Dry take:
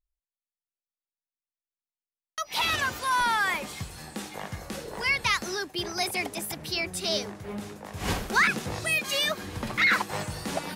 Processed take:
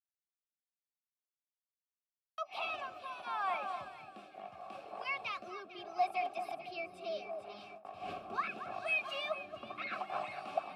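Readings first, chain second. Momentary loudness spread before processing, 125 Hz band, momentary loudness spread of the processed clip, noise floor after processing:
15 LU, −25.0 dB, 15 LU, below −85 dBFS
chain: delay that swaps between a low-pass and a high-pass 224 ms, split 1,500 Hz, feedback 62%, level −7 dB
noise gate with hold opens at −29 dBFS
rotating-speaker cabinet horn 0.75 Hz
formant filter a
parametric band 6,500 Hz −7.5 dB 0.26 octaves
notch comb filter 490 Hz
level +5 dB

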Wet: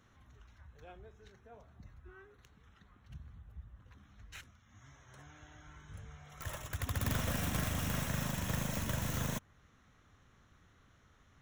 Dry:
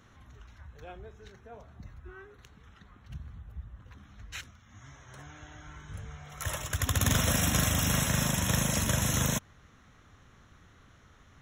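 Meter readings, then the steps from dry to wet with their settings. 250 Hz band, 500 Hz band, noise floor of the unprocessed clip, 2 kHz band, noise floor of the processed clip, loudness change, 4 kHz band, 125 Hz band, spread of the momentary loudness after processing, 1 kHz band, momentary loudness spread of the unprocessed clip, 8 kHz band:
−7.5 dB, −7.5 dB, −59 dBFS, −8.5 dB, −66 dBFS, −9.0 dB, −11.0 dB, −7.5 dB, 21 LU, −7.5 dB, 21 LU, −13.5 dB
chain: stylus tracing distortion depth 0.23 ms
dynamic equaliser 4,600 Hz, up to −4 dB, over −49 dBFS, Q 0.82
level −7.5 dB

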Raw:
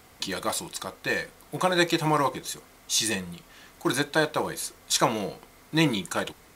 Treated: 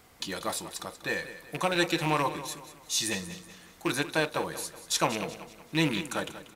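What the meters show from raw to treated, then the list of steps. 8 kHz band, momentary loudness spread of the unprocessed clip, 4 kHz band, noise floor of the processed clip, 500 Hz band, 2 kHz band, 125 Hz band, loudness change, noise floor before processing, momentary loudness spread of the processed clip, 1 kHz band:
−4.0 dB, 13 LU, −3.5 dB, −55 dBFS, −4.0 dB, −3.0 dB, −3.5 dB, −3.5 dB, −54 dBFS, 12 LU, −4.0 dB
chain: loose part that buzzes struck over −31 dBFS, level −19 dBFS
on a send: repeating echo 188 ms, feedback 42%, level −13.5 dB
on the sum: level −4 dB

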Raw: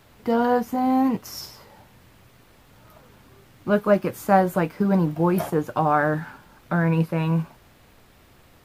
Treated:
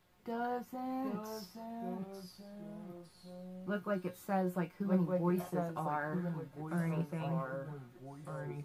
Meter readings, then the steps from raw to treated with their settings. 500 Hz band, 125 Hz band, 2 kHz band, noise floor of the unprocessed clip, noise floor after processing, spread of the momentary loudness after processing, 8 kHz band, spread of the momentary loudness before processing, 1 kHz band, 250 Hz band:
−15.0 dB, −12.5 dB, −15.5 dB, −54 dBFS, −60 dBFS, 16 LU, −14.5 dB, 13 LU, −16.5 dB, −14.0 dB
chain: delay with pitch and tempo change per echo 734 ms, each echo −2 semitones, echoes 3, each echo −6 dB
tuned comb filter 180 Hz, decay 0.15 s, harmonics all, mix 80%
level −9 dB

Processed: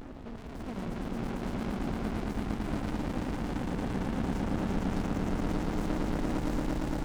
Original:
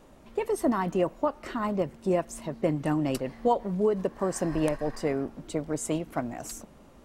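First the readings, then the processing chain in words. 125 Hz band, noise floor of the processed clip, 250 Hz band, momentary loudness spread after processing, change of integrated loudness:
+0.5 dB, −42 dBFS, −2.0 dB, 5 LU, −4.5 dB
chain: pitch vibrato 12 Hz 9.5 cents
graphic EQ with 15 bands 250 Hz +11 dB, 630 Hz +10 dB, 10,000 Hz −9 dB
in parallel at +3 dB: compressor whose output falls as the input rises −29 dBFS
on the sum: soft clipping −29.5 dBFS, distortion −3 dB
mid-hump overdrive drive 8 dB, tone 4,200 Hz, clips at −29.5 dBFS
low-shelf EQ 100 Hz +10 dB
on a send: echo that builds up and dies away 114 ms, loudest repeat 8, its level −5 dB
on the sum: windowed peak hold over 65 samples
level −3 dB

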